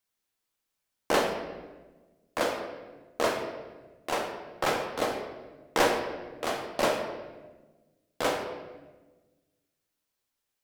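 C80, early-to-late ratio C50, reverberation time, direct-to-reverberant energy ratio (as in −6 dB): 7.5 dB, 5.5 dB, 1.3 s, 2.0 dB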